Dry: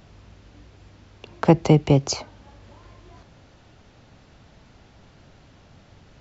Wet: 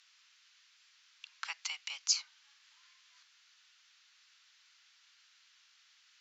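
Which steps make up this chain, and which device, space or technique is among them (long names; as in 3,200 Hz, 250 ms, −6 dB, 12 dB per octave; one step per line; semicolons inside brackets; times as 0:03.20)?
inverse Chebyshev high-pass filter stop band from 360 Hz, stop band 60 dB
piezo pickup straight into a mixer (low-pass filter 5,700 Hz 12 dB per octave; first difference)
level +3.5 dB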